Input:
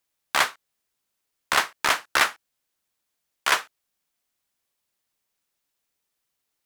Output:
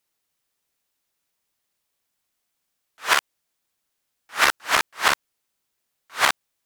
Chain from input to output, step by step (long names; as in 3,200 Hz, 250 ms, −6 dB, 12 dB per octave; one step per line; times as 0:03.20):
played backwards from end to start
level +2 dB